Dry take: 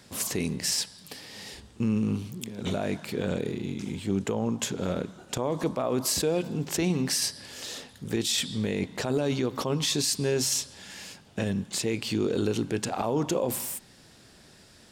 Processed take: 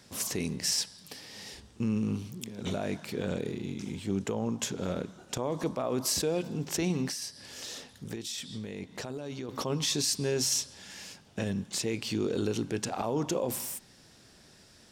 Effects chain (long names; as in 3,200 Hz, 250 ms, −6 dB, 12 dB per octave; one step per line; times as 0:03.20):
parametric band 5,700 Hz +4.5 dB 0.3 octaves
0:07.08–0:09.49: downward compressor 5 to 1, threshold −32 dBFS, peak gain reduction 9.5 dB
level −3.5 dB